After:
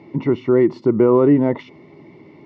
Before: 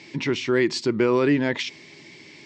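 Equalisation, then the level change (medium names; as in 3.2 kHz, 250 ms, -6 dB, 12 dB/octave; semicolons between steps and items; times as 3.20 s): Savitzky-Golay filter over 65 samples; distance through air 100 m; +7.0 dB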